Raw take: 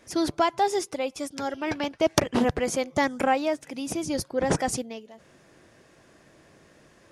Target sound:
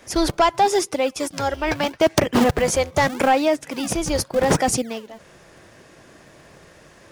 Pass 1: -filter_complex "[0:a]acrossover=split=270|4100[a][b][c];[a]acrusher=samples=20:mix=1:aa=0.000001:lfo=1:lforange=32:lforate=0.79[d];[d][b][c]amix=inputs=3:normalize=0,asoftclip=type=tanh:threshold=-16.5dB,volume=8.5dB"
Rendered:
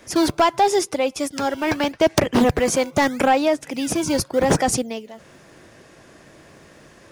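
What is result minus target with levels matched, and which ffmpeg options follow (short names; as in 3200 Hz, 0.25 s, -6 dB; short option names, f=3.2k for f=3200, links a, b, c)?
decimation with a swept rate: distortion -12 dB
-filter_complex "[0:a]acrossover=split=270|4100[a][b][c];[a]acrusher=samples=73:mix=1:aa=0.000001:lfo=1:lforange=117:lforate=0.79[d];[d][b][c]amix=inputs=3:normalize=0,asoftclip=type=tanh:threshold=-16.5dB,volume=8.5dB"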